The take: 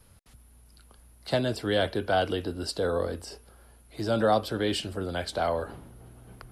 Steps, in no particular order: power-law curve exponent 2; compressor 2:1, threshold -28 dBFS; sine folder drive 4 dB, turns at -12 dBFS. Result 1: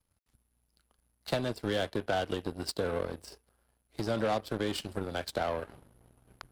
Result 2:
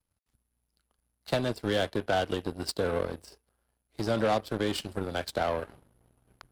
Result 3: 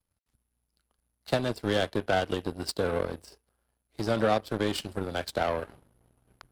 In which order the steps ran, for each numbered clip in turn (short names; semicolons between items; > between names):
sine folder > compressor > power-law curve; sine folder > power-law curve > compressor; compressor > sine folder > power-law curve